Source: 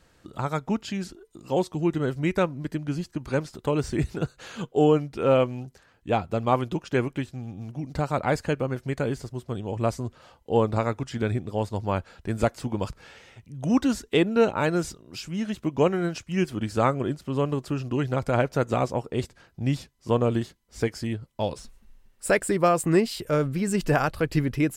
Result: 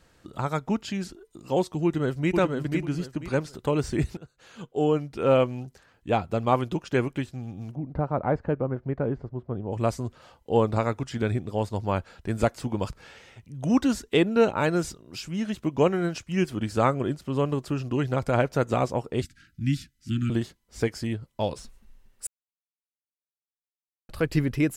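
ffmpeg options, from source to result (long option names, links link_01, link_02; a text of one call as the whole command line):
ffmpeg -i in.wav -filter_complex "[0:a]asplit=2[link_01][link_02];[link_02]afade=type=in:start_time=1.84:duration=0.01,afade=type=out:start_time=2.35:duration=0.01,aecho=0:1:490|980|1470|1960:0.668344|0.167086|0.0417715|0.0104429[link_03];[link_01][link_03]amix=inputs=2:normalize=0,asplit=3[link_04][link_05][link_06];[link_04]afade=type=out:start_time=7.74:duration=0.02[link_07];[link_05]lowpass=1100,afade=type=in:start_time=7.74:duration=0.02,afade=type=out:start_time=9.71:duration=0.02[link_08];[link_06]afade=type=in:start_time=9.71:duration=0.02[link_09];[link_07][link_08][link_09]amix=inputs=3:normalize=0,asettb=1/sr,asplit=3[link_10][link_11][link_12];[link_10]atrim=end=19.224[link_13];[link_11]atrim=start=19.22:end=20.3,asetpts=PTS-STARTPTS,afade=type=in:duration=0.004:curve=qsin,afade=type=out:start_time=1.076:duration=0.004:curve=qsin,asuperstop=centerf=660:order=20:qfactor=0.65[link_14];[link_12]atrim=start=20.296[link_15];[link_13][link_14]acrossfade=duration=0.004:curve1=hsin:curve2=qsin[link_16];[link_16][link_15]acrossfade=duration=0.004:curve1=qsin:curve2=hsin,asplit=4[link_17][link_18][link_19][link_20];[link_17]atrim=end=4.17,asetpts=PTS-STARTPTS,afade=type=out:start_time=4.166:duration=0.004:curve=hsin:silence=0.0707946[link_21];[link_18]atrim=start=4.17:end=22.27,asetpts=PTS-STARTPTS,afade=type=in:duration=1.16:silence=0.0707946,afade=type=out:start_time=18.096:duration=0.004:curve=hsin[link_22];[link_19]atrim=start=22.27:end=24.09,asetpts=PTS-STARTPTS,volume=0[link_23];[link_20]atrim=start=24.09,asetpts=PTS-STARTPTS,afade=type=in:duration=0.004:curve=hsin[link_24];[link_21][link_22][link_23][link_24]concat=n=4:v=0:a=1" out.wav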